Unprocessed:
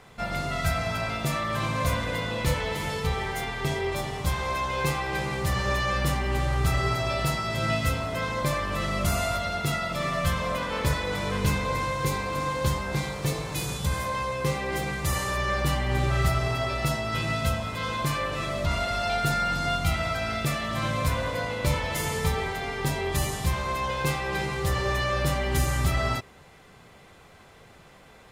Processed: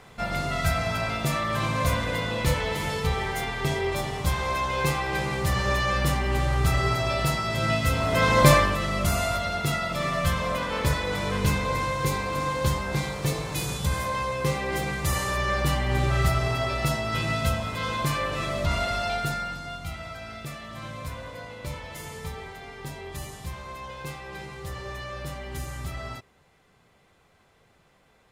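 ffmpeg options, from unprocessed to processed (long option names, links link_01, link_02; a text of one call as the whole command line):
ffmpeg -i in.wav -af "volume=11.5dB,afade=type=in:start_time=7.89:duration=0.62:silence=0.316228,afade=type=out:start_time=8.51:duration=0.26:silence=0.298538,afade=type=out:start_time=18.87:duration=0.76:silence=0.281838" out.wav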